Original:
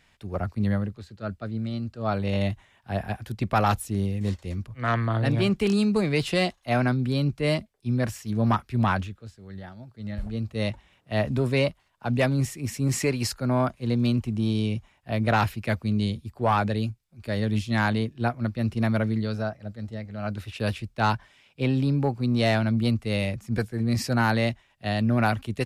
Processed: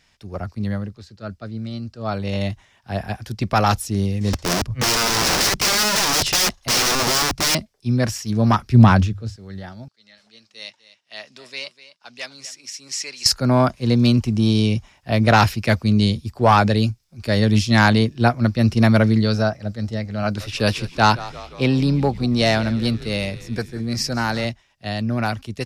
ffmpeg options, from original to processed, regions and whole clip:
-filter_complex "[0:a]asettb=1/sr,asplit=3[a][b][c];[a]atrim=end=4.334[d];[b]atrim=start=4.33:end=7.55,asetpts=PTS-STARTPTS,afade=t=in:d=0.004:c=qsin,afade=t=out:st=3.216:d=0.004:c=qsin,lowshelf=f=200:g=10,aeval=exprs='(mod(13.3*val(0)+1,2)-1)/13.3':c=same[e];[c]atrim=start=7.546[f];[d][e]acrossfade=d=0.004:c1=hsin:c2=qsin[g];[g][f]acrossfade=d=0.004:c1=qsin:c2=hsin,asettb=1/sr,asplit=3[h][i][j];[h]atrim=end=8.614[k];[i]atrim=start=8.61:end=9.36,asetpts=PTS-STARTPTS,afade=t=in:d=0.004:c=qsin,afade=t=out:st=0.746:d=0.004:c=qsin,lowshelf=f=390:g=9.5,bandreject=f=50:t=h:w=6,bandreject=f=100:t=h:w=6[l];[j]atrim=start=9.356[m];[k][l]acrossfade=d=0.004:c1=hsin:c2=qsin[n];[n][m]acrossfade=d=0.004:c1=qsin:c2=hsin,asettb=1/sr,asplit=3[o][p][q];[o]atrim=end=9.884[r];[p]atrim=start=9.88:end=13.26,asetpts=PTS-STARTPTS,afade=t=in:d=0.004:c=qsin,afade=t=out:st=3.376:d=0.004:c=qsin,highpass=150,lowpass=4.7k,aderivative,aecho=1:1:248:0.168,atrim=end_sample=149058[s];[q]atrim=start=13.256[t];[r][s]acrossfade=d=0.004:c1=hsin:c2=qsin[u];[u][t]acrossfade=d=0.004:c1=qsin:c2=hsin,asettb=1/sr,asplit=3[v][w][x];[v]atrim=end=20.234[y];[w]atrim=start=20.23:end=24.45,asetpts=PTS-STARTPTS,afade=t=in:d=0.004:c=qsin,afade=t=out:st=4.216:d=0.004:c=qsin,lowshelf=f=78:g=-9.5,asplit=7[z][aa][ab][ac][ad][ae][af];[aa]adelay=171,afreqshift=-90,volume=-17dB[ag];[ab]adelay=342,afreqshift=-180,volume=-20.9dB[ah];[ac]adelay=513,afreqshift=-270,volume=-24.8dB[ai];[ad]adelay=684,afreqshift=-360,volume=-28.6dB[aj];[ae]adelay=855,afreqshift=-450,volume=-32.5dB[ak];[af]adelay=1026,afreqshift=-540,volume=-36.4dB[al];[z][ag][ah][ai][aj][ak][al]amix=inputs=7:normalize=0,atrim=end_sample=186102[am];[x]atrim=start=24.446[an];[y][am]acrossfade=d=0.004:c1=hsin:c2=qsin[ao];[ao][an]acrossfade=d=0.004:c1=qsin:c2=hsin,equalizer=f=5.4k:t=o:w=0.66:g=10.5,dynaudnorm=f=250:g=31:m=11.5dB"

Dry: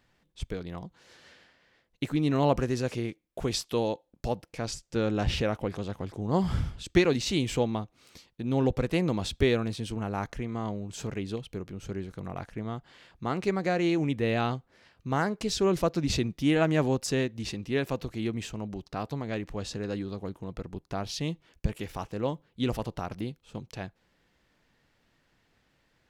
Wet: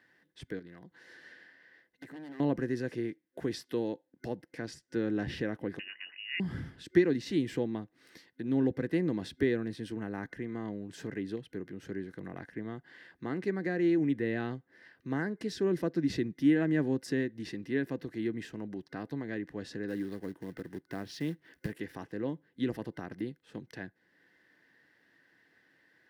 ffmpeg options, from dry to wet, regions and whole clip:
-filter_complex "[0:a]asettb=1/sr,asplit=3[a][b][c];[a]atrim=end=0.594[d];[b]atrim=start=0.59:end=2.4,asetpts=PTS-STARTPTS,afade=t=in:d=0.004:c=qsin,afade=t=out:st=1.806:d=0.004:c=qsin,acompressor=threshold=-48dB:ratio=2:attack=3.2:release=140:knee=1:detection=peak,aeval=exprs='0.0112*(abs(mod(val(0)/0.0112+3,4)-2)-1)':c=same[e];[c]atrim=start=2.396[f];[d][e]acrossfade=d=0.004:c1=hsin:c2=qsin[g];[g][f]acrossfade=d=0.004:c1=qsin:c2=hsin,asettb=1/sr,asplit=3[h][i][j];[h]atrim=end=5.794[k];[i]atrim=start=5.79:end=6.4,asetpts=PTS-STARTPTS,afade=t=in:d=0.004:c=qsin,afade=t=out:st=0.606:d=0.004:c=qsin,asplit=2[l][m];[m]adelay=16,volume=-12.5dB[n];[l][n]amix=inputs=2:normalize=0,atrim=end_sample=26901,lowpass=f=2.6k:t=q:w=0.5098,lowpass=f=2.6k:t=q:w=0.6013,lowpass=f=2.6k:t=q:w=0.9,lowpass=f=2.6k:t=q:w=2.563,afreqshift=-3000[o];[j]atrim=start=6.396[p];[k][o]acrossfade=d=0.004:c1=hsin:c2=qsin[q];[q][p]acrossfade=d=0.004:c1=qsin:c2=hsin,asettb=1/sr,asplit=3[r][s][t];[r]atrim=end=19.884[u];[s]atrim=start=19.88:end=21.78,asetpts=PTS-STARTPTS,afade=t=in:d=0.004:c=qsin,afade=t=out:st=1.896:d=0.004:c=qsin,acrusher=bits=4:mode=log:mix=0:aa=0.000001,acompressor=mode=upward:threshold=-49dB:ratio=2.5:attack=3.2:release=140:knee=2.83:detection=peak[v];[t]atrim=start=21.776[w];[u][v]acrossfade=d=0.004:c1=hsin:c2=qsin[x];[x][w]acrossfade=d=0.004:c1=qsin:c2=hsin,superequalizer=6b=2:7b=1.41:11b=3.98:15b=0.562,acrossover=split=360[y][z];[z]acompressor=threshold=-54dB:ratio=1.5[aa];[y][aa]amix=inputs=2:normalize=0,highpass=160,volume=-2.5dB"

